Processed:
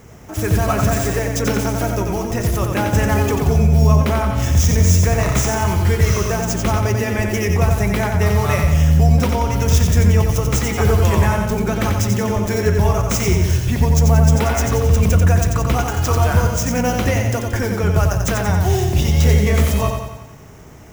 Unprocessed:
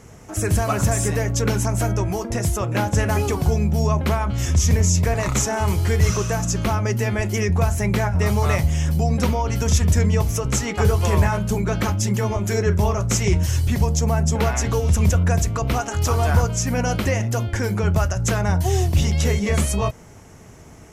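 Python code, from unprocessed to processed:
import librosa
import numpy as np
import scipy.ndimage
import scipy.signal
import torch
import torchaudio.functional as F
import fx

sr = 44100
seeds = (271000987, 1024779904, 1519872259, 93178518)

y = scipy.signal.medfilt(x, 5)
y = fx.high_shelf(y, sr, hz=9200.0, db=10.5)
y = fx.notch(y, sr, hz=4300.0, q=19.0)
y = fx.echo_feedback(y, sr, ms=90, feedback_pct=54, wet_db=-5.0)
y = y * 10.0 ** (2.0 / 20.0)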